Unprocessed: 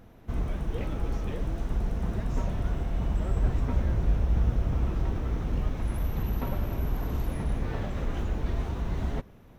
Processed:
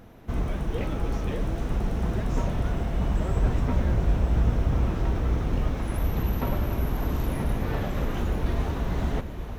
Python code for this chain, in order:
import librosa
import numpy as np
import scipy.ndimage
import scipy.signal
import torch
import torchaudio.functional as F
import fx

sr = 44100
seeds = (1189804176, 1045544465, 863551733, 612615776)

y = fx.low_shelf(x, sr, hz=110.0, db=-4.0)
y = fx.echo_diffused(y, sr, ms=950, feedback_pct=44, wet_db=-9.5)
y = F.gain(torch.from_numpy(y), 5.0).numpy()